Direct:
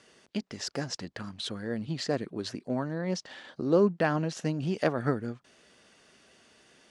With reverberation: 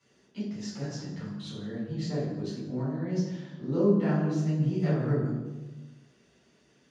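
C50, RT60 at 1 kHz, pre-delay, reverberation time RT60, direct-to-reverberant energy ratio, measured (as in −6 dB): 0.0 dB, 1.1 s, 3 ms, 1.2 s, −11.5 dB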